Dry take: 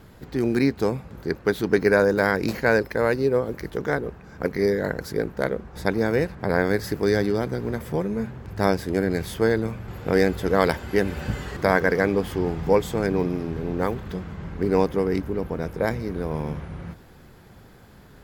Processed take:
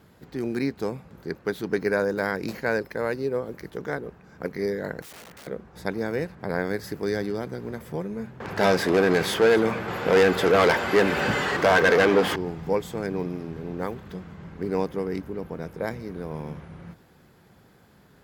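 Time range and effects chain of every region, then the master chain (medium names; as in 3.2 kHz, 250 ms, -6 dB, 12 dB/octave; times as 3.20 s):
5.02–5.47 s: peaking EQ 1.9 kHz +8 dB 1.2 oct + compression 12:1, threshold -27 dBFS + integer overflow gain 34 dB
8.40–12.36 s: overdrive pedal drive 27 dB, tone 2.8 kHz, clips at -3 dBFS + delay 249 ms -18 dB
whole clip: high-pass 120 Hz 6 dB/octave; peaking EQ 170 Hz +3 dB 0.4 oct; trim -5.5 dB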